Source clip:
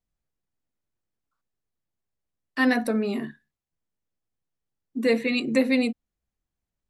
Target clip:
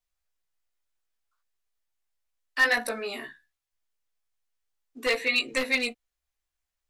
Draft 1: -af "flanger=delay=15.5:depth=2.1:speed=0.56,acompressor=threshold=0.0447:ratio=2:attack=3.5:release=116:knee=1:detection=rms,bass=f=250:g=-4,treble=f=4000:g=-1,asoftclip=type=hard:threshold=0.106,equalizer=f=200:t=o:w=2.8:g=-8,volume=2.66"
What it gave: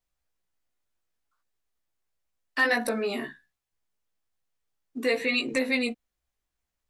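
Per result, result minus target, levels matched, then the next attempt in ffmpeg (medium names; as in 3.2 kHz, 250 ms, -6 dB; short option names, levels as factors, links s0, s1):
250 Hz band +8.5 dB; compression: peak gain reduction +6 dB
-af "flanger=delay=15.5:depth=2.1:speed=0.56,acompressor=threshold=0.0447:ratio=2:attack=3.5:release=116:knee=1:detection=rms,bass=f=250:g=-4,treble=f=4000:g=-1,asoftclip=type=hard:threshold=0.106,equalizer=f=200:t=o:w=2.8:g=-19.5,volume=2.66"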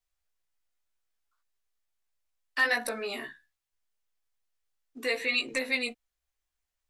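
compression: peak gain reduction +6 dB
-af "flanger=delay=15.5:depth=2.1:speed=0.56,bass=f=250:g=-4,treble=f=4000:g=-1,asoftclip=type=hard:threshold=0.106,equalizer=f=200:t=o:w=2.8:g=-19.5,volume=2.66"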